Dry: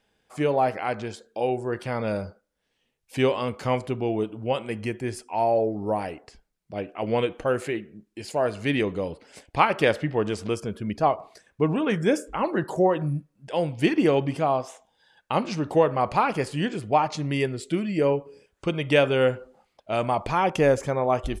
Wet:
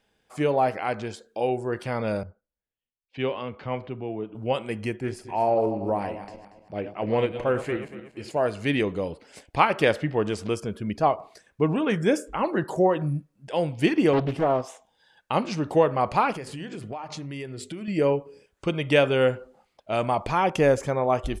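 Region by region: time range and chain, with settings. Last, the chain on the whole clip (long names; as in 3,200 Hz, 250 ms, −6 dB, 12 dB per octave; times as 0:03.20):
0:02.23–0:04.35: low-pass filter 3,500 Hz 24 dB per octave + downward compressor 1.5 to 1, threshold −38 dBFS + multiband upward and downward expander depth 70%
0:04.96–0:08.37: feedback delay that plays each chunk backwards 117 ms, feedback 57%, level −10 dB + high-shelf EQ 4,500 Hz −8 dB + highs frequency-modulated by the lows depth 0.11 ms
0:14.13–0:14.62: bass and treble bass +2 dB, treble −6 dB + highs frequency-modulated by the lows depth 0.85 ms
0:16.32–0:17.88: mains-hum notches 50/100/150/200/250 Hz + downward compressor, threshold −32 dBFS
whole clip: no processing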